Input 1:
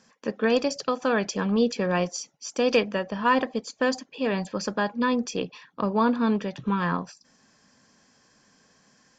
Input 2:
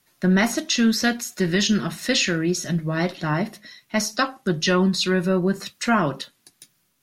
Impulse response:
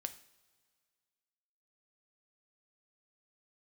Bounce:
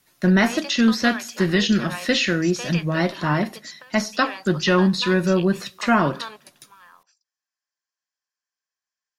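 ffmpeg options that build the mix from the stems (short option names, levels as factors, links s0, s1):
-filter_complex "[0:a]highpass=1100,agate=range=0.282:threshold=0.00178:ratio=16:detection=peak,acompressor=threshold=0.0398:ratio=6,volume=1.06[s0];[1:a]volume=0.944,asplit=3[s1][s2][s3];[s2]volume=0.398[s4];[s3]apad=whole_len=405130[s5];[s0][s5]sidechaingate=range=0.141:threshold=0.00447:ratio=16:detection=peak[s6];[2:a]atrim=start_sample=2205[s7];[s4][s7]afir=irnorm=-1:irlink=0[s8];[s6][s1][s8]amix=inputs=3:normalize=0,acrossover=split=4600[s9][s10];[s10]acompressor=threshold=0.0141:ratio=4:attack=1:release=60[s11];[s9][s11]amix=inputs=2:normalize=0"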